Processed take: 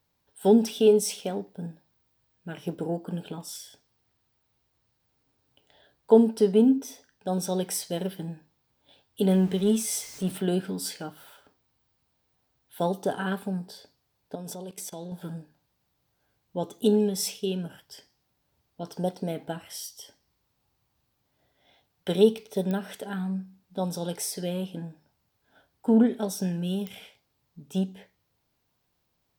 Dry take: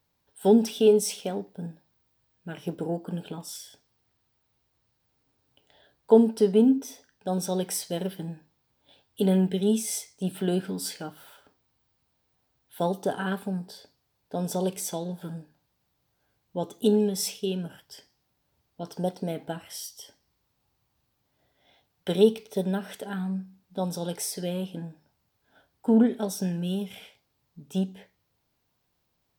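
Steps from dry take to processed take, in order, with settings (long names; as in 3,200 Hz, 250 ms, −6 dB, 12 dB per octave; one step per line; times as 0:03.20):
0:09.29–0:10.38: converter with a step at zero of −39.5 dBFS
0:14.35–0:15.12: output level in coarse steps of 19 dB
digital clicks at 0:22.71/0:26.87, −19 dBFS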